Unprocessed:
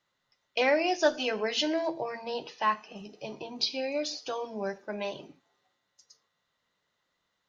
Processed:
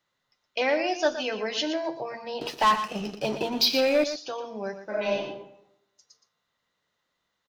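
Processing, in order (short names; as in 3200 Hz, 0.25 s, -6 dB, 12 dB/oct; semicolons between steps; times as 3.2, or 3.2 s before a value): 2.41–4.04 sample leveller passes 3; echo 0.119 s -10.5 dB; 4.84–5.24 reverb throw, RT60 0.81 s, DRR -6 dB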